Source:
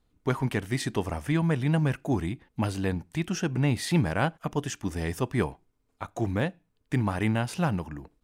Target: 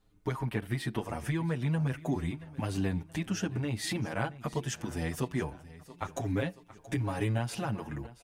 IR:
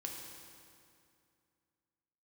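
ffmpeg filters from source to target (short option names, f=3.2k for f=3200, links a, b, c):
-filter_complex "[0:a]asettb=1/sr,asplit=3[a][b][c];[a]atrim=end=0.424[d];[b]atrim=start=0.42:end=0.99,asetpts=PTS-STARTPTS,afade=t=in:d=0.004:c=qsin,afade=t=out:st=0.566:d=0.004:c=qsin,equalizer=f=6.5k:w=1.6:g=-12[e];[c]atrim=start=0.986[f];[d][e]acrossfade=d=0.004:c1=hsin:c2=qsin[g];[g][f]acrossfade=d=0.004:c1=qsin:c2=hsin,asettb=1/sr,asplit=3[h][i][j];[h]atrim=end=6.084[k];[i]atrim=start=6.08:end=7.38,asetpts=PTS-STARTPTS,afade=t=in:d=0.004:c=qsin,afade=t=out:st=1.296:d=0.004:c=qsin,aecho=1:1:7.2:0.83,atrim=end_sample=57330[l];[j]atrim=start=7.376[m];[k][l]acrossfade=d=0.004:c1=hsin:c2=qsin[n];[n][m]acrossfade=d=0.004:c1=qsin:c2=hsin,acompressor=threshold=-32dB:ratio=4,aecho=1:1:677|1354|2031|2708:0.119|0.0606|0.0309|0.0158,asplit=2[o][p];[p]adelay=7.1,afreqshift=0.29[q];[o][q]amix=inputs=2:normalize=1,volume=5dB"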